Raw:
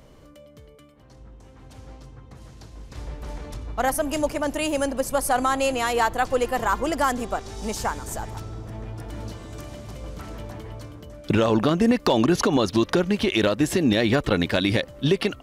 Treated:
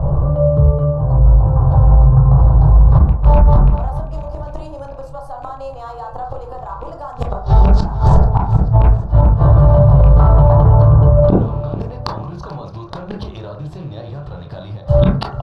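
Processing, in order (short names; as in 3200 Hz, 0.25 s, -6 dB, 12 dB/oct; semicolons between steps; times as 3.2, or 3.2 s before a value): rattling part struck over -29 dBFS, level -19 dBFS; low-pass opened by the level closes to 860 Hz, open at -21 dBFS; EQ curve 100 Hz 0 dB, 150 Hz +5 dB, 220 Hz -23 dB, 770 Hz -3 dB, 1100 Hz -5 dB, 2200 Hz -27 dB, 4200 Hz -8 dB, 6600 Hz -14 dB, 12000 Hz -1 dB; compressor 6:1, threshold -28 dBFS, peak gain reduction 10.5 dB; flipped gate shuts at -27 dBFS, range -34 dB; air absorption 150 m; feedback echo 0.437 s, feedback 42%, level -18 dB; reverb RT60 0.45 s, pre-delay 17 ms, DRR 1.5 dB; maximiser +35.5 dB; gain -1 dB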